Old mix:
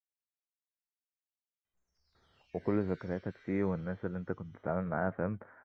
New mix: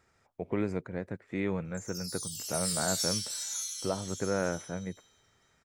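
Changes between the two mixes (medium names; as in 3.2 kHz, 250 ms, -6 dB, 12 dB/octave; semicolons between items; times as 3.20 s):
speech: entry -2.15 s; master: remove low-pass 1.8 kHz 24 dB/octave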